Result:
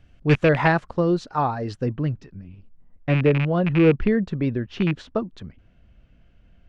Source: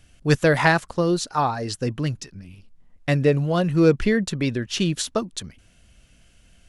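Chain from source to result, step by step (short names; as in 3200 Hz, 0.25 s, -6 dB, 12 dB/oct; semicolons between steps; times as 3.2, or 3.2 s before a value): rattling part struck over -21 dBFS, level -9 dBFS; tape spacing loss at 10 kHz 28 dB, from 1.85 s at 10 kHz 42 dB; gain +1.5 dB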